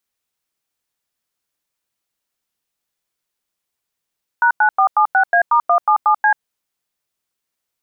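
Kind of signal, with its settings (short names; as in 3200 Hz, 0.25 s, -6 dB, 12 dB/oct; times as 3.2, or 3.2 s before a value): DTMF "#9476A*177C", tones 88 ms, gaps 94 ms, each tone -12.5 dBFS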